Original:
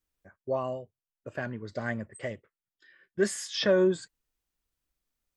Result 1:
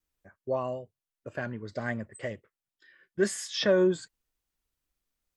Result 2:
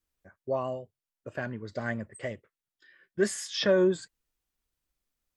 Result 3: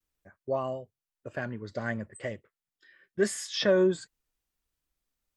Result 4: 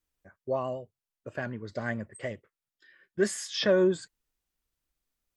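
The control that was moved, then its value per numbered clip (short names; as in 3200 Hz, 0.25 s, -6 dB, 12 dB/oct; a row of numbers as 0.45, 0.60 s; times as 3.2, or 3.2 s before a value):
vibrato, rate: 1.2, 6.2, 0.39, 9.3 Hz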